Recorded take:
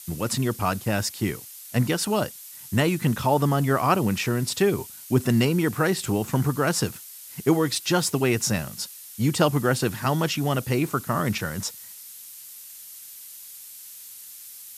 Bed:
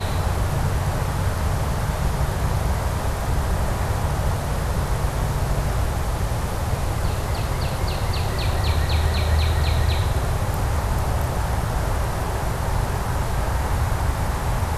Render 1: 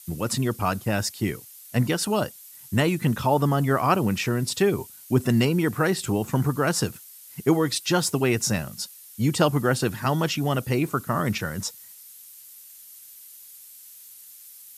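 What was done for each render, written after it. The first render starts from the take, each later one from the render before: denoiser 6 dB, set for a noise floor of -43 dBFS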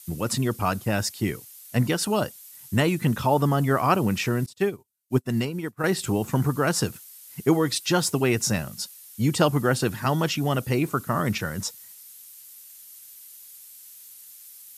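4.46–5.84 upward expander 2.5:1, over -40 dBFS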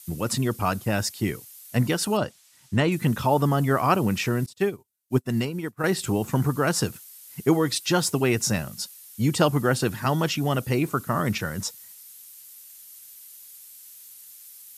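2.17–2.92 air absorption 71 m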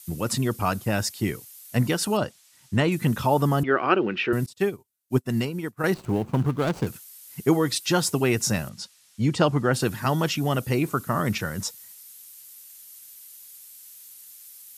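3.63–4.33 speaker cabinet 290–3500 Hz, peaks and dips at 360 Hz +9 dB, 690 Hz -4 dB, 1000 Hz -6 dB, 1500 Hz +6 dB, 2800 Hz +5 dB; 5.94–6.87 median filter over 25 samples; 8.69–9.74 air absorption 76 m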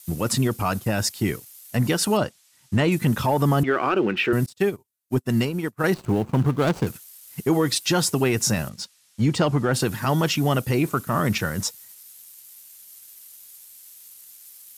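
sample leveller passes 1; limiter -12 dBFS, peak gain reduction 7.5 dB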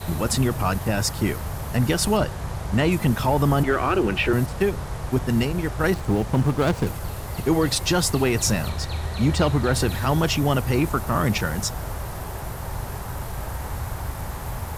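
add bed -8 dB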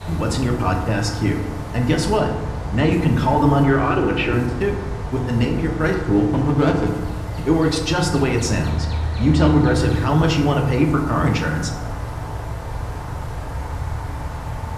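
air absorption 63 m; FDN reverb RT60 1.2 s, low-frequency decay 1.2×, high-frequency decay 0.45×, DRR 1 dB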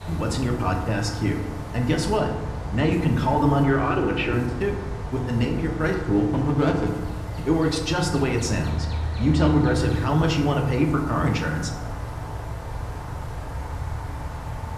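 gain -4 dB

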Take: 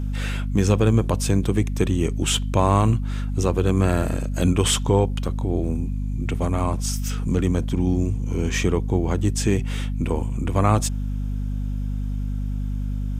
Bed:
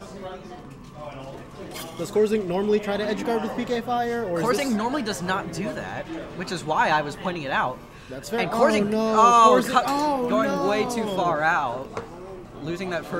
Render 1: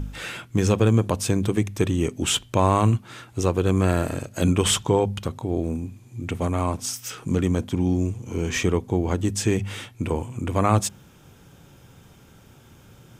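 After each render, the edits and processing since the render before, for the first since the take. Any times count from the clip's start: de-hum 50 Hz, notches 5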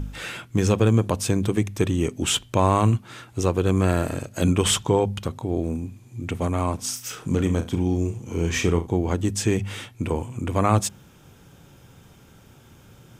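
6.77–8.87 flutter echo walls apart 6.1 m, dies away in 0.24 s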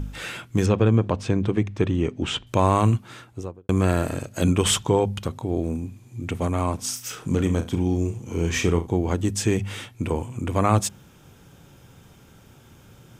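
0.66–2.47 Bessel low-pass 2900 Hz; 3.05–3.69 studio fade out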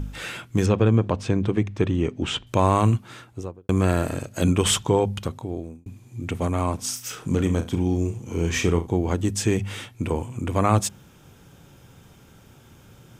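5.25–5.86 fade out linear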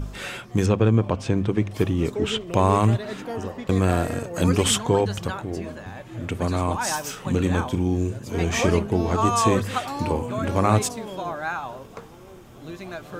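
add bed -7.5 dB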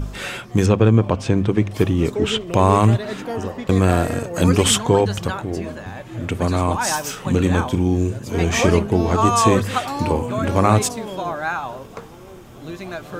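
gain +4.5 dB; limiter -1 dBFS, peak gain reduction 1.5 dB

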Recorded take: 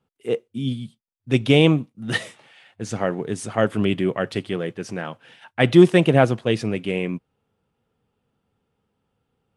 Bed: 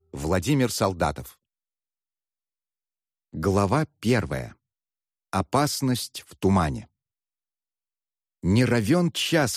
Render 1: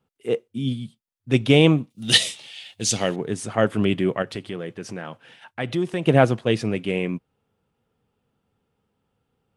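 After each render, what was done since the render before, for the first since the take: 1.9–3.16 resonant high shelf 2300 Hz +14 dB, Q 1.5; 4.22–6.07 compressor 2:1, threshold -30 dBFS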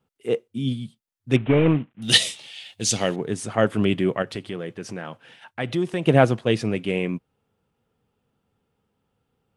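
1.36–2.02 CVSD 16 kbps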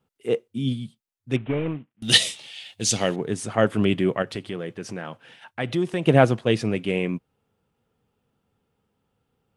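0.75–2.02 fade out, to -21.5 dB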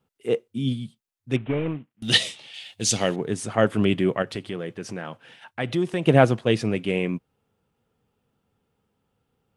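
2.09–2.54 LPF 3600 Hz 6 dB/oct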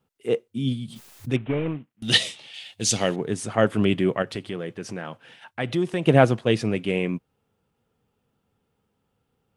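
0.82–1.33 backwards sustainer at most 37 dB/s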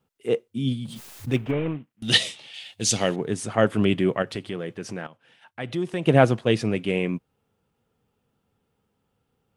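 0.85–1.51 G.711 law mismatch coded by mu; 5.07–6.28 fade in, from -13.5 dB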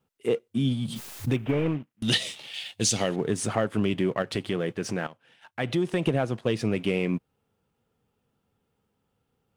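compressor 10:1, threshold -24 dBFS, peak gain reduction 15 dB; sample leveller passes 1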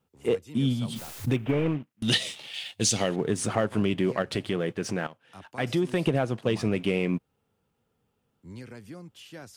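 add bed -22.5 dB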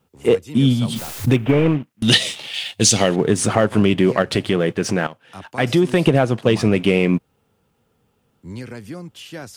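gain +10 dB; limiter -2 dBFS, peak gain reduction 2 dB

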